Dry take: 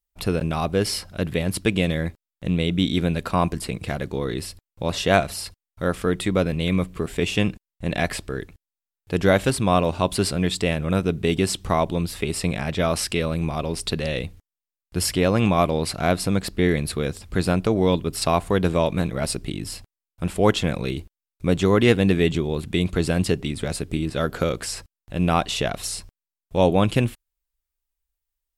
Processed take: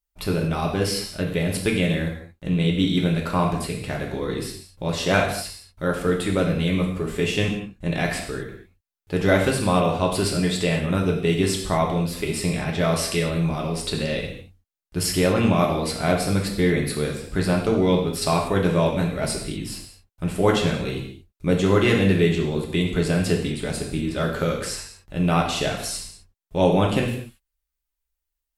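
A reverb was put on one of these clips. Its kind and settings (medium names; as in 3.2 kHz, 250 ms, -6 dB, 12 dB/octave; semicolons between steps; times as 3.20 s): gated-style reverb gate 260 ms falling, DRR -1 dB; trim -3 dB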